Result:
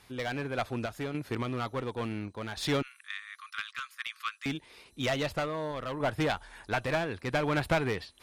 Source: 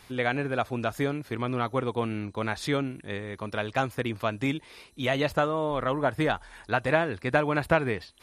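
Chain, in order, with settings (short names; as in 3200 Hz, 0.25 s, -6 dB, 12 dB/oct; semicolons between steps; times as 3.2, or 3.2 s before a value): tracing distortion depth 0.029 ms; 2.82–4.46 Chebyshev high-pass 1100 Hz, order 8; dynamic EQ 3400 Hz, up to +4 dB, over -43 dBFS, Q 1.3; one-sided clip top -24 dBFS; random-step tremolo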